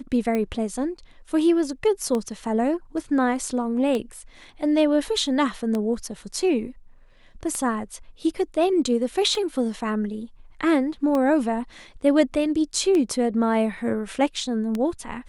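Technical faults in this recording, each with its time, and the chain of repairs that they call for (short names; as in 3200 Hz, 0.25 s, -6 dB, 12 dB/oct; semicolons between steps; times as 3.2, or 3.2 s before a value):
tick 33 1/3 rpm -14 dBFS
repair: de-click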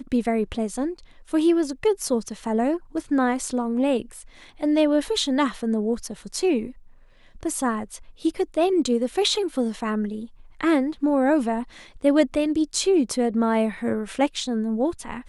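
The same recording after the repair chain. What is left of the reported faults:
none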